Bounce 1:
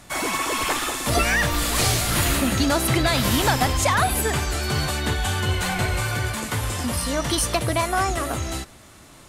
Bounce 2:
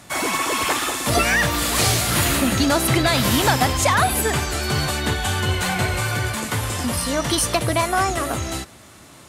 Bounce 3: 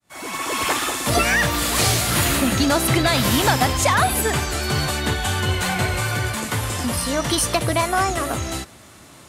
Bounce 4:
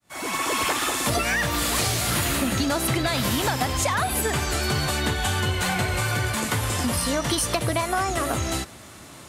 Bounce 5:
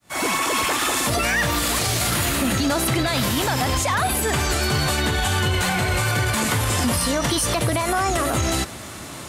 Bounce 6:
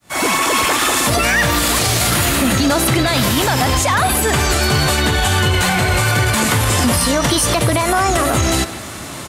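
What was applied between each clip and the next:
high-pass filter 72 Hz; level +2.5 dB
fade in at the beginning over 0.67 s
downward compressor, threshold −22 dBFS, peak gain reduction 9.5 dB; level +1.5 dB
brickwall limiter −21 dBFS, peak gain reduction 10 dB; level +8.5 dB
far-end echo of a speakerphone 150 ms, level −12 dB; level +6 dB

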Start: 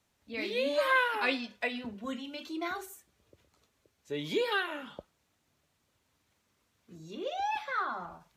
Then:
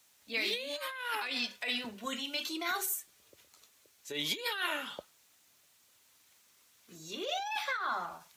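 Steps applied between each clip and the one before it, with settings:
compressor whose output falls as the input rises −36 dBFS, ratio −1
spectral tilt +3.5 dB per octave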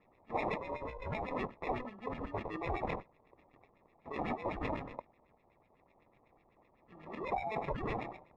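decimation without filtering 29×
auto-filter low-pass sine 8 Hz 780–2,700 Hz
level −4 dB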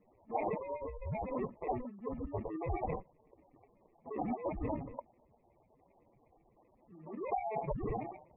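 expanding power law on the bin magnitudes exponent 2.4
high-frequency loss of the air 230 metres
level +1.5 dB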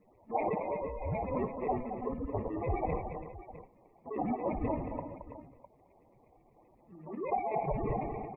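multi-tap delay 58/221/331/656 ms −14/−8/−12/−15 dB
level +3 dB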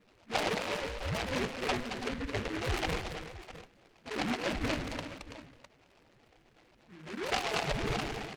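short delay modulated by noise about 1,600 Hz, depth 0.22 ms

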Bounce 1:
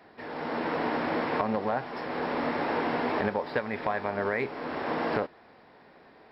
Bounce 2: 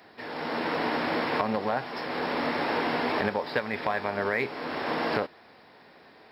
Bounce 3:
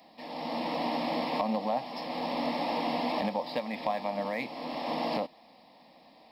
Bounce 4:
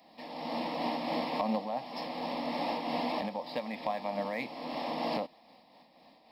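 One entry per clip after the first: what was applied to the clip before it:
high-pass filter 52 Hz; high-shelf EQ 3,000 Hz +11.5 dB
phaser with its sweep stopped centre 400 Hz, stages 6
amplitude modulation by smooth noise, depth 55%

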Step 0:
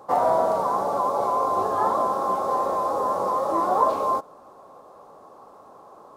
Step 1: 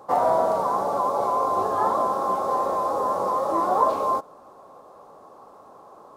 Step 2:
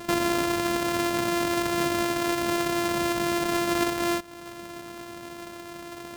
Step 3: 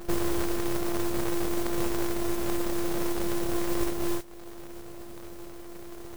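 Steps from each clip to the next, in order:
no processing that can be heard
samples sorted by size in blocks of 128 samples; downward compressor 3 to 1, threshold −34 dBFS, peak gain reduction 14.5 dB; level +7.5 dB
full-wave rectification; noise that follows the level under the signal 15 dB

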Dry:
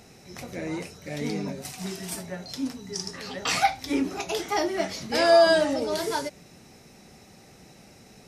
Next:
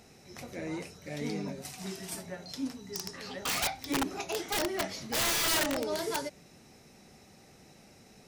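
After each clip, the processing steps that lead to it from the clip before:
mains-hum notches 60/120/180 Hz
wrap-around overflow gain 18.5 dB
level −5 dB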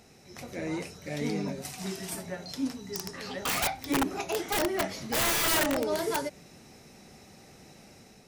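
dynamic equaliser 4,800 Hz, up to −5 dB, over −45 dBFS, Q 0.77
automatic gain control gain up to 4 dB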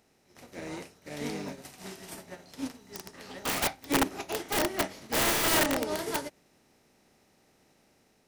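compressor on every frequency bin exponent 0.6
expander for the loud parts 2.5 to 1, over −39 dBFS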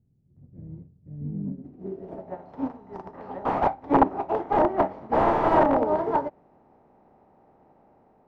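low-pass filter sweep 130 Hz → 880 Hz, 0:01.23–0:02.39
level +5.5 dB

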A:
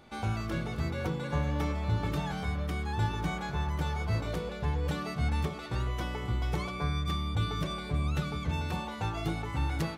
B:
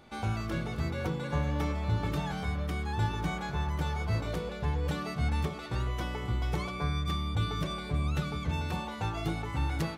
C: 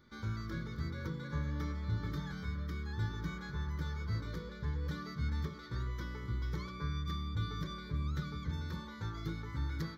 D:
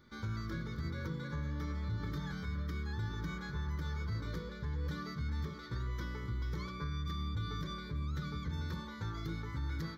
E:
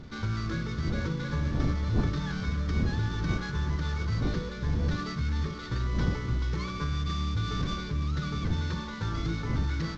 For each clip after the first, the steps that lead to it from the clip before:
no processing that can be heard
phaser with its sweep stopped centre 2,700 Hz, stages 6; level −5.5 dB
brickwall limiter −31.5 dBFS, peak gain reduction 6 dB; level +1.5 dB
variable-slope delta modulation 32 kbit/s; wind on the microphone 160 Hz −43 dBFS; level +8 dB

